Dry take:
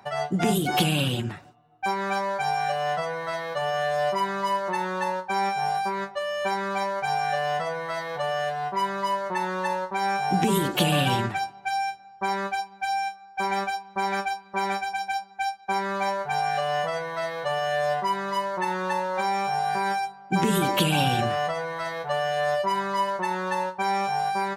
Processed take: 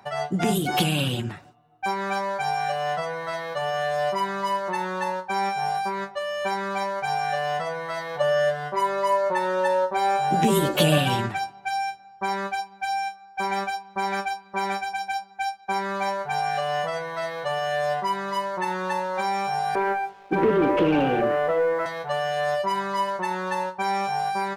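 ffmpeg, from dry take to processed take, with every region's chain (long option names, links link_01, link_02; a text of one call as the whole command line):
ffmpeg -i in.wav -filter_complex "[0:a]asettb=1/sr,asplit=3[link_01][link_02][link_03];[link_01]atrim=end=8.204[link_04];[link_02]atrim=start=8.2:end=10.98,asetpts=PTS-STARTPTS,afade=type=in:duration=0.004:curve=qsin,afade=type=out:start_time=2.776:duration=0.004:curve=qsin,equalizer=frequency=590:width_type=o:width=0.31:gain=10.5,asplit=2[link_05][link_06];[link_06]adelay=13,volume=-4dB[link_07];[link_05][link_07]amix=inputs=2:normalize=0,atrim=end_sample=122598[link_08];[link_03]atrim=start=10.976[link_09];[link_04][link_08]acrossfade=duration=0.004:curve1=hsin:curve2=qsin[link_10];[link_10][link_09]acrossfade=duration=0.004:curve1=qsin:curve2=hsin,asettb=1/sr,asplit=3[link_11][link_12][link_13];[link_11]atrim=end=19.754[link_14];[link_12]atrim=start=19.75:end=21.86,asetpts=PTS-STARTPTS,afade=type=in:duration=0.004:curve=qsin,afade=type=out:start_time=2.106:duration=0.004:curve=qsin,highpass=frequency=140:width=0.5412,highpass=frequency=140:width=1.3066,equalizer=frequency=200:width_type=q:width=4:gain=-7,equalizer=frequency=300:width_type=q:width=4:gain=8,equalizer=frequency=470:width_type=q:width=4:gain=8,equalizer=frequency=750:width_type=q:width=4:gain=-9,equalizer=frequency=1100:width_type=q:width=4:gain=-7,equalizer=frequency=1700:width_type=q:width=4:gain=-5,lowpass=frequency=2200:width=0.5412,lowpass=frequency=2200:width=1.3066,asplit=2[link_15][link_16];[link_16]highpass=frequency=720:poles=1,volume=19dB,asoftclip=type=tanh:threshold=-10dB[link_17];[link_15][link_17]amix=inputs=2:normalize=0,lowpass=frequency=1100:poles=1,volume=-6dB,aeval=exprs='sgn(val(0))*max(abs(val(0))-0.00299,0)':channel_layout=same[link_18];[link_13]atrim=start=21.856[link_19];[link_14][link_18]acrossfade=duration=0.004:curve1=hsin:curve2=qsin[link_20];[link_20][link_19]acrossfade=duration=0.004:curve1=qsin:curve2=hsin" out.wav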